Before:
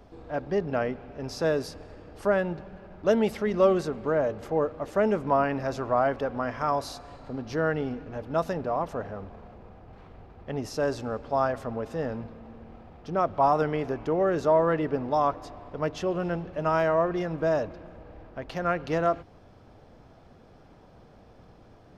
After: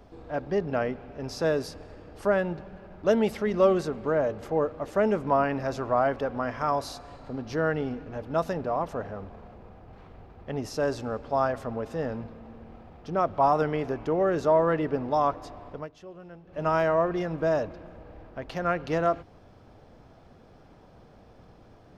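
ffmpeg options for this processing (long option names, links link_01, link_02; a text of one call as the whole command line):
ffmpeg -i in.wav -filter_complex "[0:a]asplit=3[link_01][link_02][link_03];[link_01]atrim=end=15.88,asetpts=PTS-STARTPTS,afade=type=out:start_time=15.71:duration=0.17:silence=0.149624[link_04];[link_02]atrim=start=15.88:end=16.46,asetpts=PTS-STARTPTS,volume=-16.5dB[link_05];[link_03]atrim=start=16.46,asetpts=PTS-STARTPTS,afade=type=in:duration=0.17:silence=0.149624[link_06];[link_04][link_05][link_06]concat=n=3:v=0:a=1" out.wav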